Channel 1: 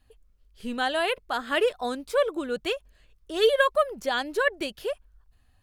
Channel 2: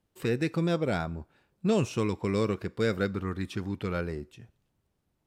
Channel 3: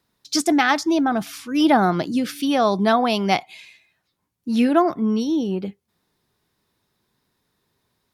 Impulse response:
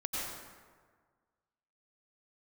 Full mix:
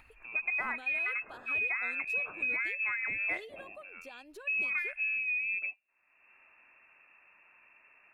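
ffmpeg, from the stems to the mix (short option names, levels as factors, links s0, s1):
-filter_complex "[0:a]acompressor=threshold=0.0282:ratio=6,volume=0.158[s0];[1:a]volume=0.106[s1];[2:a]volume=0.596[s2];[s1][s2]amix=inputs=2:normalize=0,lowpass=f=2400:t=q:w=0.5098,lowpass=f=2400:t=q:w=0.6013,lowpass=f=2400:t=q:w=0.9,lowpass=f=2400:t=q:w=2.563,afreqshift=-2800,acompressor=threshold=0.0316:ratio=12,volume=1[s3];[s0][s3]amix=inputs=2:normalize=0,acompressor=mode=upward:threshold=0.00447:ratio=2.5"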